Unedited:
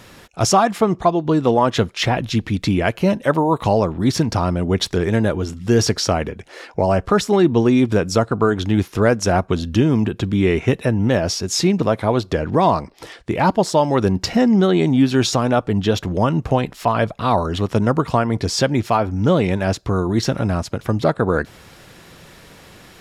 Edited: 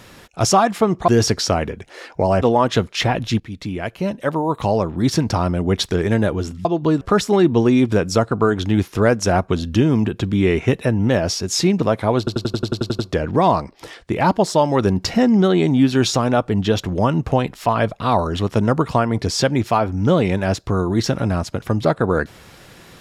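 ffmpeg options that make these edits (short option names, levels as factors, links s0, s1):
-filter_complex "[0:a]asplit=15[s0][s1][s2][s3][s4][s5][s6][s7][s8][s9][s10][s11][s12][s13][s14];[s0]atrim=end=1.082[s15];[s1]atrim=start=5.668:end=7.012[s16];[s2]atrim=start=1.438:end=2.42,asetpts=PTS-STARTPTS,afade=t=out:st=0.978:d=0.004:c=hsin:silence=0.251189[s17];[s3]atrim=start=2.42:end=5.672,asetpts=PTS-STARTPTS,afade=t=in:d=1.78:silence=0.251189[s18];[s4]atrim=start=1.078:end=1.442[s19];[s5]atrim=start=7.008:end=12.272[s20];[s6]atrim=start=12.178:end=12.272[s21];[s7]atrim=start=12.178:end=12.272[s22];[s8]atrim=start=12.178:end=12.272[s23];[s9]atrim=start=12.178:end=12.272[s24];[s10]atrim=start=12.178:end=12.272[s25];[s11]atrim=start=12.178:end=12.272[s26];[s12]atrim=start=12.178:end=12.272[s27];[s13]atrim=start=12.178:end=12.272[s28];[s14]atrim=start=12.178[s29];[s15][s16]acrossfade=d=0.004:c1=hsin:c2=hsin[s30];[s17][s18]concat=n=2:v=0:a=1[s31];[s30][s31]acrossfade=d=0.004:c1=hsin:c2=hsin[s32];[s32][s19]acrossfade=d=0.004:c1=hsin:c2=hsin[s33];[s33][s20]acrossfade=d=0.004:c1=hsin:c2=hsin[s34];[s34][s21]acrossfade=d=0.004:c1=hsin:c2=hsin[s35];[s35][s22]acrossfade=d=0.004:c1=hsin:c2=hsin[s36];[s36][s23]acrossfade=d=0.004:c1=hsin:c2=hsin[s37];[s37][s24]acrossfade=d=0.004:c1=hsin:c2=hsin[s38];[s38][s25]acrossfade=d=0.004:c1=hsin:c2=hsin[s39];[s39][s26]acrossfade=d=0.004:c1=hsin:c2=hsin[s40];[s40][s27]acrossfade=d=0.004:c1=hsin:c2=hsin[s41];[s41][s28]acrossfade=d=0.004:c1=hsin:c2=hsin[s42];[s42][s29]acrossfade=d=0.004:c1=hsin:c2=hsin"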